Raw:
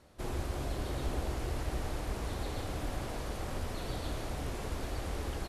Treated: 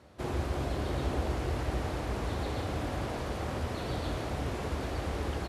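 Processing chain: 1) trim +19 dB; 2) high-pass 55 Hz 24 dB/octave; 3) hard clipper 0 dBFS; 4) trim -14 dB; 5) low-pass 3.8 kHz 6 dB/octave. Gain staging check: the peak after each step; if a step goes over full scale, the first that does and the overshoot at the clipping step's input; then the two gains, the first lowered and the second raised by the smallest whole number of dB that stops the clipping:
-4.0 dBFS, -6.0 dBFS, -6.0 dBFS, -20.0 dBFS, -20.5 dBFS; nothing clips

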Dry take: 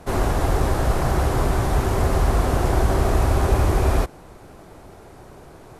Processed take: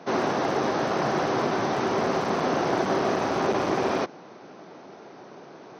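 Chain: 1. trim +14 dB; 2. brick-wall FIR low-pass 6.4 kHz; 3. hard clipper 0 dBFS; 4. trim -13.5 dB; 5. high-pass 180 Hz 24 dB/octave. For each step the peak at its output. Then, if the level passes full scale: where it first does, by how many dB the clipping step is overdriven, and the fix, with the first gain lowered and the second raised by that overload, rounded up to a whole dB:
+8.0 dBFS, +8.0 dBFS, 0.0 dBFS, -13.5 dBFS, -12.0 dBFS; step 1, 8.0 dB; step 1 +6 dB, step 4 -5.5 dB

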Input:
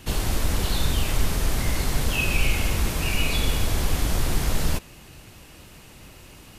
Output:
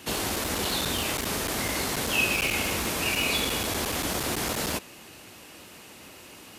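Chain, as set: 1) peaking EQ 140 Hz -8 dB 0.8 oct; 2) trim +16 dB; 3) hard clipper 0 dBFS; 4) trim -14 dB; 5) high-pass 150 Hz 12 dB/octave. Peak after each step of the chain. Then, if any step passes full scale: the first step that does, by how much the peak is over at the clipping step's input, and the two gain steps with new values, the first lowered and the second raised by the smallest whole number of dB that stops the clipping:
-9.0 dBFS, +7.0 dBFS, 0.0 dBFS, -14.0 dBFS, -13.5 dBFS; step 2, 7.0 dB; step 2 +9 dB, step 4 -7 dB

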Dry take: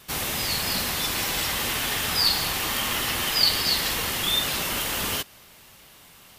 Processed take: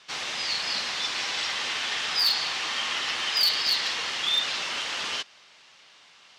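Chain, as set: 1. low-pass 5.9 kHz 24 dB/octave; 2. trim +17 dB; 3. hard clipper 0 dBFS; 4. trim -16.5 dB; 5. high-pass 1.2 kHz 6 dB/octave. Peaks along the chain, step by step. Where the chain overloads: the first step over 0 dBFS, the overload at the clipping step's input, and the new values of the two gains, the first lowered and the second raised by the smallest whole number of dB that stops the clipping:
-7.0 dBFS, +10.0 dBFS, 0.0 dBFS, -16.5 dBFS, -14.0 dBFS; step 2, 10.0 dB; step 2 +7 dB, step 4 -6.5 dB

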